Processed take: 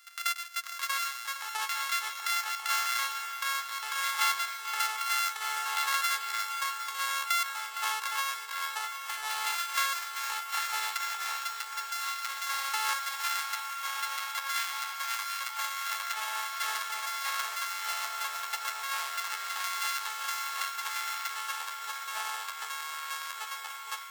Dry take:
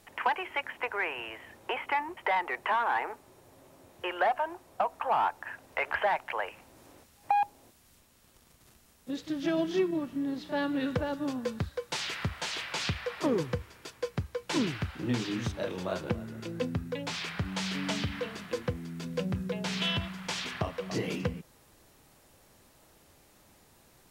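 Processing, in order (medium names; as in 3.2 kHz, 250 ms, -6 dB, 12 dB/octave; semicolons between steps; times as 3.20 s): sorted samples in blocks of 64 samples; steep high-pass 1.2 kHz 36 dB/octave; in parallel at +0.5 dB: compression, threshold -50 dBFS, peak gain reduction 23 dB; on the sum: ever faster or slower copies 570 ms, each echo -4 st, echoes 2; shuffle delay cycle 767 ms, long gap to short 1.5:1, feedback 77%, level -12 dB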